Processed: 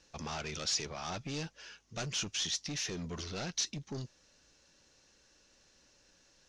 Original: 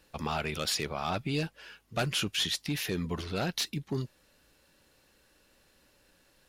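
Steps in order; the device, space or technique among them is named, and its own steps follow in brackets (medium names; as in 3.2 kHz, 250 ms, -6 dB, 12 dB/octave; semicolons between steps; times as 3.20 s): overdriven synthesiser ladder filter (saturation -31.5 dBFS, distortion -10 dB; four-pole ladder low-pass 6.6 kHz, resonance 70%); trim +8 dB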